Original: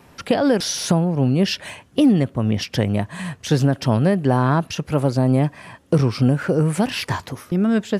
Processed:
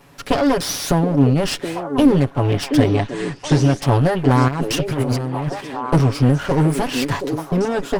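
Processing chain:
lower of the sound and its delayed copy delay 7.1 ms
0:02.94–0:03.82: Butterworth low-pass 8,700 Hz
0:04.48–0:05.61: compressor whose output falls as the input rises −24 dBFS, ratio −1
echo through a band-pass that steps 725 ms, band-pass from 350 Hz, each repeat 1.4 octaves, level −2.5 dB
level +2 dB

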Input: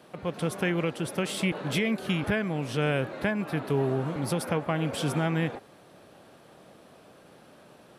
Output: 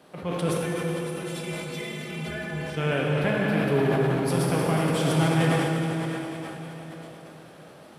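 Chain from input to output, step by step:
0:00.55–0:02.77: stiff-string resonator 74 Hz, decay 0.34 s, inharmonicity 0.03
dense smooth reverb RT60 4.8 s, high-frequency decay 0.95×, DRR −4 dB
level that may fall only so fast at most 28 dB per second
level −1.5 dB

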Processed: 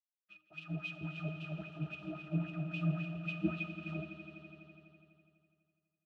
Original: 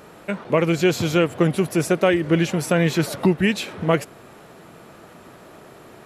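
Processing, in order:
each half-wave held at its own peak
inverse Chebyshev band-stop filter 380–1,700 Hz, stop band 40 dB
low-shelf EQ 130 Hz −7.5 dB
bit reduction 5 bits
amplitude modulation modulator 130 Hz, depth 35%
resonances in every octave D#, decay 0.21 s
LFO wah 3.7 Hz 460–2,900 Hz, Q 4.4
on a send: echo that builds up and dies away 83 ms, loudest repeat 5, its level −11.5 dB
on the sum: multiband upward and downward expander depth 70%
level +14 dB

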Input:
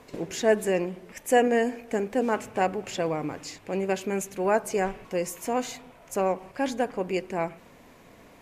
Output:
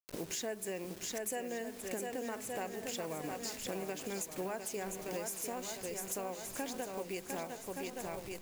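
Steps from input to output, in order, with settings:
hold until the input has moved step −41.5 dBFS
camcorder AGC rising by 5.6 dB per second
high-shelf EQ 3,600 Hz +12 dB
feedback echo with a long and a short gap by turns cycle 1,170 ms, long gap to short 1.5 to 1, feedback 37%, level −7.5 dB
downward compressor 6 to 1, threshold −31 dBFS, peak gain reduction 15.5 dB
level −6 dB

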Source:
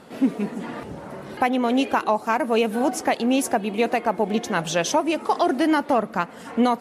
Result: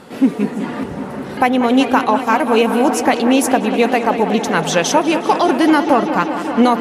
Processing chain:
notch filter 660 Hz, Q 12
on a send: delay with a low-pass on its return 192 ms, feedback 83%, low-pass 3,800 Hz, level −11 dB
on the sum: level +7 dB

